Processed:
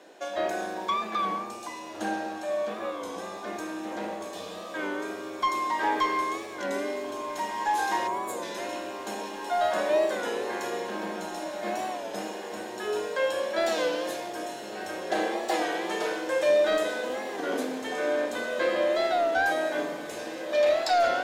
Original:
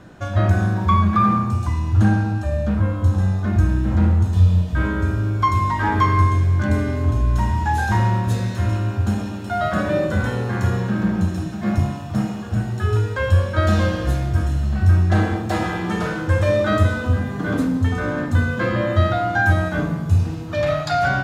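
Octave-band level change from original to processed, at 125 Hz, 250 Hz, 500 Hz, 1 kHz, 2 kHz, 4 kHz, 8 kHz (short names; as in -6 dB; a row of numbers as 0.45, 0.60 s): under -35 dB, -13.5 dB, -1.5 dB, -5.0 dB, -6.5 dB, -0.5 dB, n/a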